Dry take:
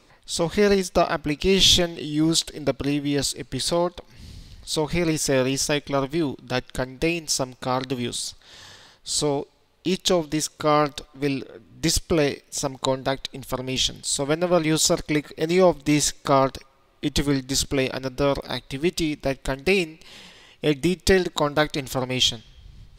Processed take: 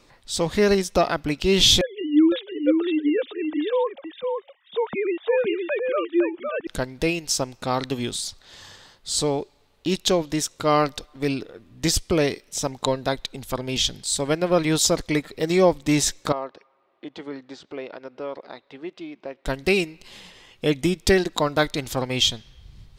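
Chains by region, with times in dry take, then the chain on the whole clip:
1.81–6.67 sine-wave speech + echo 0.51 s -4.5 dB
16.32–19.46 HPF 400 Hz + compressor 1.5:1, threshold -35 dBFS + tape spacing loss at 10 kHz 36 dB
whole clip: dry

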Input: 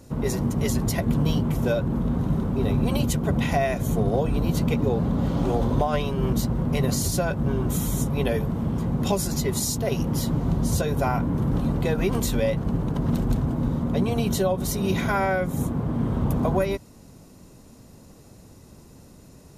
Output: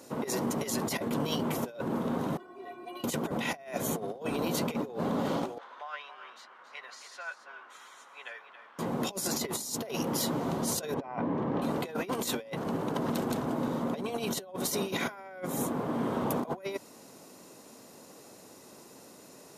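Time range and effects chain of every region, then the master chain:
2.37–3.04 tone controls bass -7 dB, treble -10 dB + metallic resonator 350 Hz, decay 0.2 s, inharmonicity 0.008
5.58–8.79 ladder band-pass 1800 Hz, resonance 35% + echo 0.276 s -11 dB
10.94–11.62 LPF 2300 Hz + notch 1400 Hz, Q 7.4
whole clip: HPF 370 Hz 12 dB/oct; negative-ratio compressor -32 dBFS, ratio -0.5

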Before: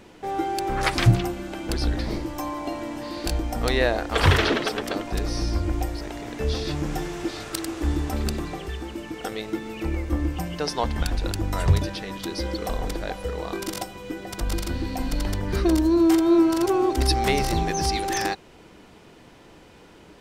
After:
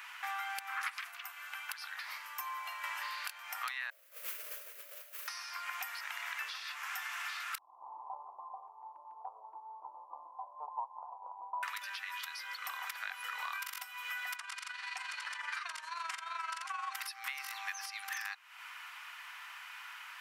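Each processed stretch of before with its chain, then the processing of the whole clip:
1.01–2.84 high shelf 12000 Hz +5.5 dB + upward expander, over -31 dBFS
3.9–5.28 steep low-pass 600 Hz 96 dB/oct + modulation noise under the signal 28 dB
7.58–11.63 steep low-pass 1000 Hz 96 dB/oct + dynamic EQ 250 Hz, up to +4 dB, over -41 dBFS, Q 1.8
14.36–16.94 steep low-pass 9600 Hz + low shelf 370 Hz -6.5 dB + AM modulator 23 Hz, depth 40%
whole clip: steep high-pass 1100 Hz 36 dB/oct; compressor 10:1, threshold -45 dBFS; band shelf 5700 Hz -8.5 dB; gain +9.5 dB

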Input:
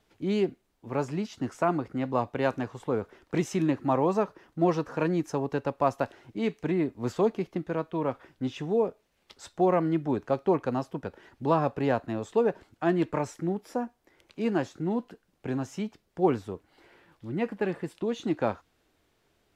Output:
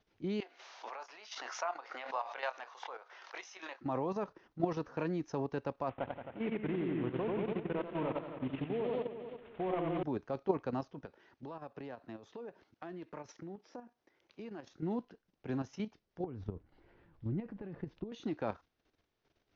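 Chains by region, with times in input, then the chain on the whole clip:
0.4–3.81 HPF 700 Hz 24 dB/oct + doubler 24 ms -11 dB + backwards sustainer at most 46 dB/s
5.89–10.03 CVSD 16 kbps + warbling echo 89 ms, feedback 70%, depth 86 cents, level -3.5 dB
11.05–14.67 HPF 180 Hz 6 dB/oct + compressor 4:1, threshold -37 dBFS
16.24–18.12 compressor 16:1, threshold -33 dBFS + RIAA curve playback
whole clip: steep low-pass 6400 Hz 96 dB/oct; level quantiser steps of 10 dB; gain -4.5 dB

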